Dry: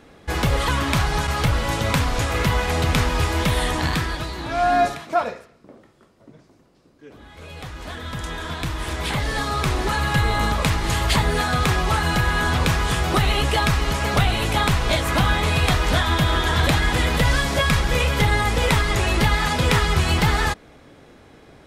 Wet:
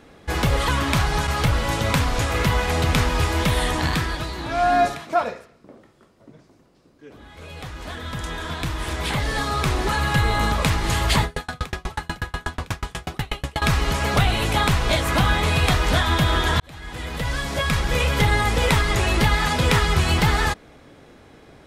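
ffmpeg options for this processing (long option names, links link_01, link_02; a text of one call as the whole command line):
ffmpeg -i in.wav -filter_complex "[0:a]asettb=1/sr,asplit=3[link_01][link_02][link_03];[link_01]atrim=end=11.244[link_04];[link_02]atrim=start=11.24:end=13.62,asetpts=PTS-STARTPTS,afade=type=in:duration=0.004:curve=qsin,afade=type=out:start_time=2.376:duration=0.004:curve=qsin,aeval=exprs='val(0)*pow(10,-37*if(lt(mod(8.2*n/s,1),2*abs(8.2)/1000),1-mod(8.2*n/s,1)/(2*abs(8.2)/1000),(mod(8.2*n/s,1)-2*abs(8.2)/1000)/(1-2*abs(8.2)/1000))/20)':channel_layout=same[link_05];[link_03]atrim=start=13.616[link_06];[link_04][link_05]acrossfade=duration=0.004:curve1=hsin:curve2=qsin[link_07];[link_07][link_06]acrossfade=duration=0.004:curve1=qsin:curve2=hsin,asplit=2[link_08][link_09];[link_08]atrim=end=16.6,asetpts=PTS-STARTPTS,afade=type=out:start_time=16.596:duration=0.004:curve=hsin[link_10];[link_09]atrim=start=16.6,asetpts=PTS-STARTPTS,afade=type=in:duration=1.55[link_11];[link_10][link_11]concat=n=2:v=0:a=1" out.wav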